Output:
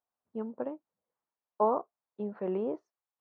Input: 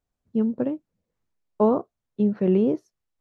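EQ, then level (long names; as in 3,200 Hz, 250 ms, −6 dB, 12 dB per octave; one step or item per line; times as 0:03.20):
resonant band-pass 940 Hz, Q 1.6
0.0 dB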